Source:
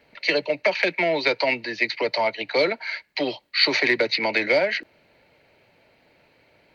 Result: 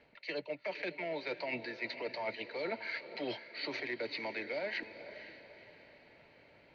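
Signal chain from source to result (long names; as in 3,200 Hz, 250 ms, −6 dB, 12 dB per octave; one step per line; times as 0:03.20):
reversed playback
downward compressor 10 to 1, threshold −32 dBFS, peak gain reduction 18 dB
reversed playback
high-frequency loss of the air 110 metres
feedback delay with all-pass diffusion 484 ms, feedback 42%, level −11.5 dB
level −3 dB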